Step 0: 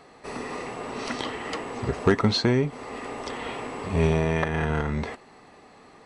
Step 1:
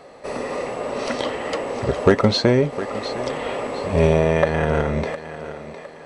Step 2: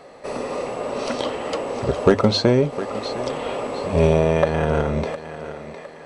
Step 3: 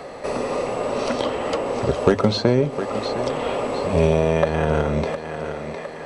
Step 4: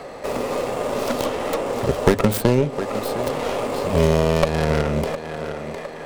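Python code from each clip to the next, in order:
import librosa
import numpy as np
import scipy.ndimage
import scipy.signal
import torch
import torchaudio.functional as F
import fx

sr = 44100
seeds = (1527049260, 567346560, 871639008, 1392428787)

y1 = fx.peak_eq(x, sr, hz=560.0, db=13.5, octaves=0.37)
y1 = fx.echo_thinned(y1, sr, ms=709, feedback_pct=39, hz=210.0, wet_db=-12)
y1 = F.gain(torch.from_numpy(y1), 3.5).numpy()
y2 = fx.hum_notches(y1, sr, base_hz=50, count=2)
y2 = fx.dynamic_eq(y2, sr, hz=1900.0, q=3.9, threshold_db=-45.0, ratio=4.0, max_db=-7)
y3 = y2 + 10.0 ** (-21.0 / 20.0) * np.pad(y2, (int(129 * sr / 1000.0), 0))[:len(y2)]
y3 = fx.band_squash(y3, sr, depth_pct=40)
y4 = fx.tracing_dist(y3, sr, depth_ms=0.49)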